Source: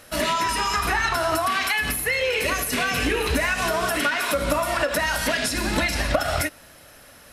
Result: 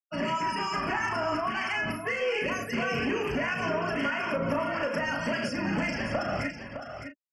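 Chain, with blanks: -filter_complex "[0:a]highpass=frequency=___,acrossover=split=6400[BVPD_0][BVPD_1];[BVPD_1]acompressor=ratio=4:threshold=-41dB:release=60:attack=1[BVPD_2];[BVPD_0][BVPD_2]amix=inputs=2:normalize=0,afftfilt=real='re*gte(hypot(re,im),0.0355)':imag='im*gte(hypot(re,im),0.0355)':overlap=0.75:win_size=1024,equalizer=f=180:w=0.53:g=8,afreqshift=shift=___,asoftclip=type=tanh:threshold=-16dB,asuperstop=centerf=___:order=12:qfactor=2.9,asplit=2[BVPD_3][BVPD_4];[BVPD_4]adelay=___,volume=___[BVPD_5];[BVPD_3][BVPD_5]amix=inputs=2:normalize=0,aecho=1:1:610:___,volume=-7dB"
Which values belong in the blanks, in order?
140, -17, 3800, 36, -7dB, 0.355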